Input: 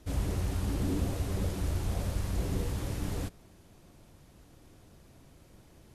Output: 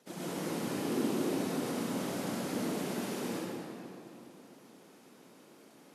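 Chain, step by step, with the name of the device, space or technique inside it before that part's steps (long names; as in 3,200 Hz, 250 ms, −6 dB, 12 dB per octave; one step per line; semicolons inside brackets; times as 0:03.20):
whispering ghost (random phases in short frames; high-pass filter 220 Hz 24 dB per octave; convolution reverb RT60 2.9 s, pre-delay 85 ms, DRR −7 dB)
level −4 dB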